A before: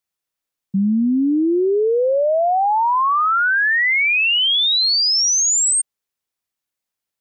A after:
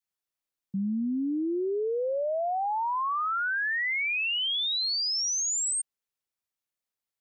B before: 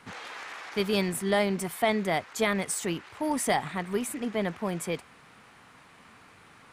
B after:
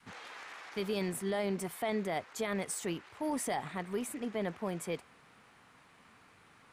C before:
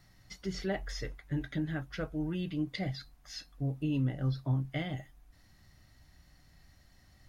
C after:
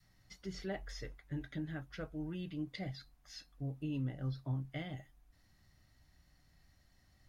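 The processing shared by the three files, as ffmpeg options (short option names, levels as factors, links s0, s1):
-af "adynamicequalizer=threshold=0.0282:dfrequency=480:dqfactor=0.88:tfrequency=480:tqfactor=0.88:attack=5:release=100:ratio=0.375:range=2:mode=boostabove:tftype=bell,alimiter=limit=0.119:level=0:latency=1:release=12,volume=0.447"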